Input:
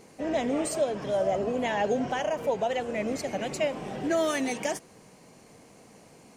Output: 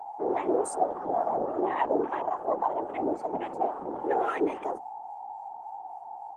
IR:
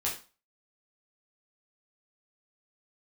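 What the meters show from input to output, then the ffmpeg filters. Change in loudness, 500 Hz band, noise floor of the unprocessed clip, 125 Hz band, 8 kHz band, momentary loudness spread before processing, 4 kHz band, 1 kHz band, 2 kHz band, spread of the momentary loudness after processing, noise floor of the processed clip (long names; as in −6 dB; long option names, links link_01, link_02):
−0.5 dB, −1.5 dB, −54 dBFS, −10.0 dB, can't be measured, 5 LU, below −15 dB, +5.0 dB, −7.0 dB, 13 LU, −42 dBFS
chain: -filter_complex "[0:a]acrossover=split=670[link_01][link_02];[link_01]aeval=exprs='val(0)*(1-0.7/2+0.7/2*cos(2*PI*3.6*n/s))':channel_layout=same[link_03];[link_02]aeval=exprs='val(0)*(1-0.7/2-0.7/2*cos(2*PI*3.6*n/s))':channel_layout=same[link_04];[link_03][link_04]amix=inputs=2:normalize=0,asplit=2[link_05][link_06];[link_06]adelay=94,lowpass=frequency=2800:poles=1,volume=-24dB,asplit=2[link_07][link_08];[link_08]adelay=94,lowpass=frequency=2800:poles=1,volume=0.5,asplit=2[link_09][link_10];[link_10]adelay=94,lowpass=frequency=2800:poles=1,volume=0.5[link_11];[link_05][link_07][link_09][link_11]amix=inputs=4:normalize=0,afwtdn=0.01,equalizer=frequency=250:width_type=o:width=1:gain=7,equalizer=frequency=1000:width_type=o:width=1:gain=7,equalizer=frequency=8000:width_type=o:width=1:gain=7,aeval=exprs='val(0)+0.0158*sin(2*PI*700*n/s)':channel_layout=same,afreqshift=120,afftfilt=real='hypot(re,im)*cos(2*PI*random(0))':imag='hypot(re,im)*sin(2*PI*random(1))':win_size=512:overlap=0.75,highpass=frequency=58:width=0.5412,highpass=frequency=58:width=1.3066,highshelf=frequency=3300:gain=-9,bandreject=frequency=50:width_type=h:width=6,bandreject=frequency=100:width_type=h:width=6,bandreject=frequency=150:width_type=h:width=6,bandreject=frequency=200:width_type=h:width=6,bandreject=frequency=250:width_type=h:width=6,volume=5dB" -ar 48000 -c:a libopus -b:a 24k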